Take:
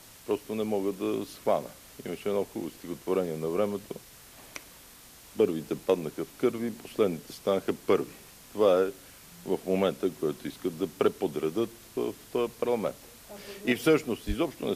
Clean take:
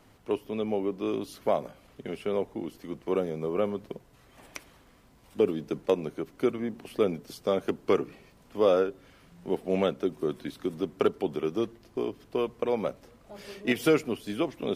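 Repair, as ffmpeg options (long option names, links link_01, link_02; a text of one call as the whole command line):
ffmpeg -i in.wav -filter_complex "[0:a]asplit=3[link_01][link_02][link_03];[link_01]afade=type=out:start_time=14.27:duration=0.02[link_04];[link_02]highpass=frequency=140:width=0.5412,highpass=frequency=140:width=1.3066,afade=type=in:start_time=14.27:duration=0.02,afade=type=out:start_time=14.39:duration=0.02[link_05];[link_03]afade=type=in:start_time=14.39:duration=0.02[link_06];[link_04][link_05][link_06]amix=inputs=3:normalize=0,afwtdn=0.0028" out.wav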